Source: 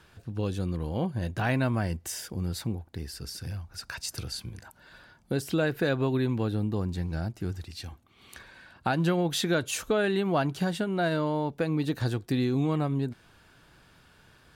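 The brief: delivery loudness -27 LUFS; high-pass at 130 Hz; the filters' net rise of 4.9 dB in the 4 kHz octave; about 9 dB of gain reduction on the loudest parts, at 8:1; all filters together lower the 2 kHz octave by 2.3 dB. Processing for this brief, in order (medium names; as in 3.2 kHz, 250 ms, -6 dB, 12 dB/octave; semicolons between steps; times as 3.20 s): high-pass 130 Hz; peaking EQ 2 kHz -5 dB; peaking EQ 4 kHz +7 dB; compression 8:1, threshold -31 dBFS; trim +9.5 dB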